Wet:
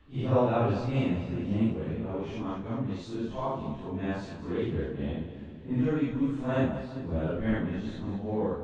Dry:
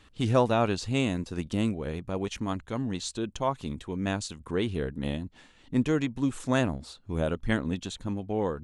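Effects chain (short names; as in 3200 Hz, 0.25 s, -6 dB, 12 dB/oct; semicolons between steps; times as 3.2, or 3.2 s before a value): phase scrambler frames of 0.2 s; tape spacing loss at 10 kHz 29 dB; split-band echo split 390 Hz, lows 0.365 s, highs 0.2 s, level -11 dB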